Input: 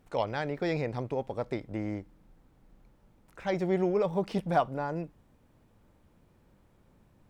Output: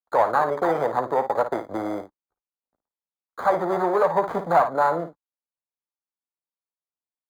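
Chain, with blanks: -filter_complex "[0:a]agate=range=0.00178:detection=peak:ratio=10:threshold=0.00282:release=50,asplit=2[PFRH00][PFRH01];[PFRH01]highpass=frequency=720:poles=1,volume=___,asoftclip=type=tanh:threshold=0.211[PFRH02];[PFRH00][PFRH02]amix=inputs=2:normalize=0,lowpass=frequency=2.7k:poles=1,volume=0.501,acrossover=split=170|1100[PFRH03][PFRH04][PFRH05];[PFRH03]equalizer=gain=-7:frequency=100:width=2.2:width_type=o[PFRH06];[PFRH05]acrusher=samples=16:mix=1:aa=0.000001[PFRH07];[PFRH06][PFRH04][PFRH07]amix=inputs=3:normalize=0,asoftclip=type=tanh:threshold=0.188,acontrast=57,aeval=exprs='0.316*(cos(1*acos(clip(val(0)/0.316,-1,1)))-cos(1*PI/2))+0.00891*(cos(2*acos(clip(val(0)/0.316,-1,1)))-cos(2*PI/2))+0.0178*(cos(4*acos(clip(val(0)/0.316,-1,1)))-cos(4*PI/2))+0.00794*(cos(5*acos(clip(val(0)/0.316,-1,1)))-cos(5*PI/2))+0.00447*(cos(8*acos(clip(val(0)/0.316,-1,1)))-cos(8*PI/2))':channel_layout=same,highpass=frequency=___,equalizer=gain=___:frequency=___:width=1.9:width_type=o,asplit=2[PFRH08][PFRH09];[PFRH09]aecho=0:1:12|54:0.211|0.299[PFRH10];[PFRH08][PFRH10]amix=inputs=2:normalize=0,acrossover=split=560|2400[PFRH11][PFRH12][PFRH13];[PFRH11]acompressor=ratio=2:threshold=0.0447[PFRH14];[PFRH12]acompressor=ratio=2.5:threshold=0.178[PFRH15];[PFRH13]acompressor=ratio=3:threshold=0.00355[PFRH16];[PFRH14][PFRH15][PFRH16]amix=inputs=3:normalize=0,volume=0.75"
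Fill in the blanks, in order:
3.55, 44, 13, 1.1k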